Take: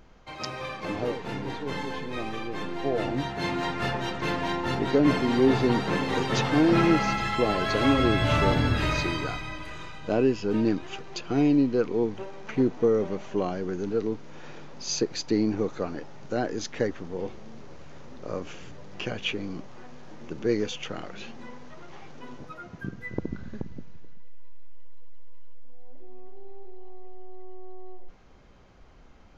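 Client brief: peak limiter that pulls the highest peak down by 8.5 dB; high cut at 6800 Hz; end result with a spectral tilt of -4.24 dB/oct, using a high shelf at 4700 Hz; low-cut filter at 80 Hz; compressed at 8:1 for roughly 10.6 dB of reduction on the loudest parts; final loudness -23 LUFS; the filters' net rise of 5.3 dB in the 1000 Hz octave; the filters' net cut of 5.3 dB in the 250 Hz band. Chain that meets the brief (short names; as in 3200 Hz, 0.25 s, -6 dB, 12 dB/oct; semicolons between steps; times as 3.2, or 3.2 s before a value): HPF 80 Hz; LPF 6800 Hz; bell 250 Hz -7.5 dB; bell 1000 Hz +7 dB; high shelf 4700 Hz +6.5 dB; compressor 8:1, threshold -29 dBFS; gain +12.5 dB; limiter -12 dBFS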